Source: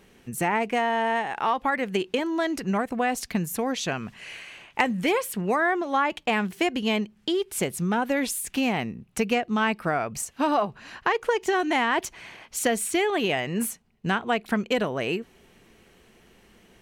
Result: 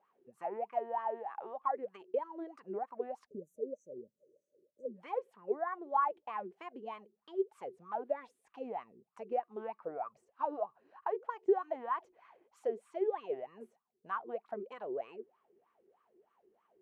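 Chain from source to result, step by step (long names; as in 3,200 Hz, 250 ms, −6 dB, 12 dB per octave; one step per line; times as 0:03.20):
LFO wah 3.2 Hz 360–1,200 Hz, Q 14
time-frequency box erased 0:03.27–0:04.95, 610–5,800 Hz
level +1 dB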